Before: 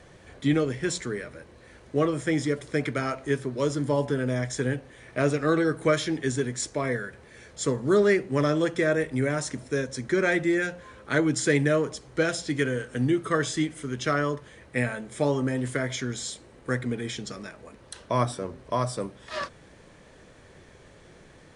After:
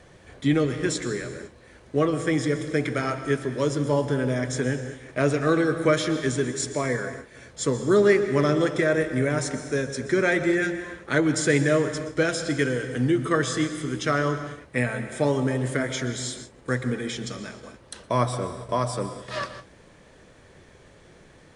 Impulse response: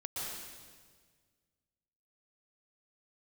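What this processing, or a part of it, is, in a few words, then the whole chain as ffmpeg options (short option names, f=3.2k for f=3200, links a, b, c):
keyed gated reverb: -filter_complex "[0:a]asplit=3[a][b][c];[1:a]atrim=start_sample=2205[d];[b][d]afir=irnorm=-1:irlink=0[e];[c]apad=whole_len=950720[f];[e][f]sidechaingate=range=-33dB:threshold=-47dB:ratio=16:detection=peak,volume=-8.5dB[g];[a][g]amix=inputs=2:normalize=0"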